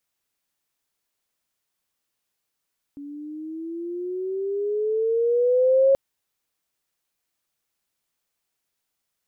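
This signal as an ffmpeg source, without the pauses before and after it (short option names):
-f lavfi -i "aevalsrc='pow(10,(-13+21.5*(t/2.98-1))/20)*sin(2*PI*282*2.98/(11.5*log(2)/12)*(exp(11.5*log(2)/12*t/2.98)-1))':d=2.98:s=44100"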